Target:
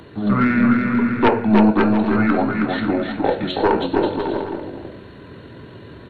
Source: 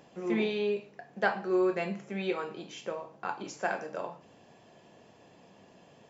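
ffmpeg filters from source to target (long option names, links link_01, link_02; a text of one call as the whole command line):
ffmpeg -i in.wav -filter_complex "[0:a]acrossover=split=300|970[link_01][link_02][link_03];[link_01]acompressor=threshold=-51dB:ratio=16[link_04];[link_04][link_02][link_03]amix=inputs=3:normalize=0,aeval=exprs='0.237*(cos(1*acos(clip(val(0)/0.237,-1,1)))-cos(1*PI/2))+0.0596*(cos(3*acos(clip(val(0)/0.237,-1,1)))-cos(3*PI/2))+0.0422*(cos(4*acos(clip(val(0)/0.237,-1,1)))-cos(4*PI/2))+0.106*(cos(5*acos(clip(val(0)/0.237,-1,1)))-cos(5*PI/2))':channel_layout=same,aecho=1:1:320|544|700.8|810.6|887.4:0.631|0.398|0.251|0.158|0.1,asetrate=25476,aresample=44100,atempo=1.73107,volume=9dB" out.wav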